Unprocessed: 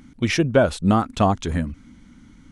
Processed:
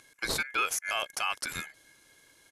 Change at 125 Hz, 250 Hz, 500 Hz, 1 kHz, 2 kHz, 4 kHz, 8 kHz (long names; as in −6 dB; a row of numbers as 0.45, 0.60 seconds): −28.0, −28.0, −20.5, −10.5, −2.0, −2.0, +1.5 decibels